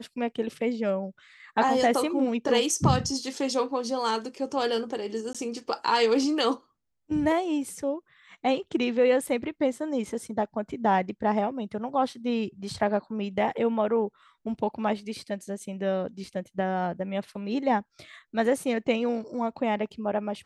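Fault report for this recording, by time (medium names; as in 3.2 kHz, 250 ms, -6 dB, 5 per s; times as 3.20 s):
5.33–5.35 s: dropout 16 ms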